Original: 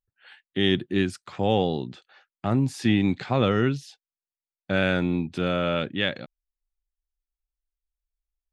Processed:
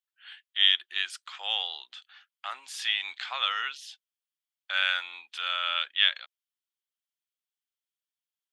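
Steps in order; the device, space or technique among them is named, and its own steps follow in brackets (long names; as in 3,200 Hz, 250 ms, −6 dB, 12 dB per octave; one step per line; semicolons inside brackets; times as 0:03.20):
headphones lying on a table (high-pass filter 1,100 Hz 24 dB per octave; parametric band 3,200 Hz +9 dB 0.39 octaves)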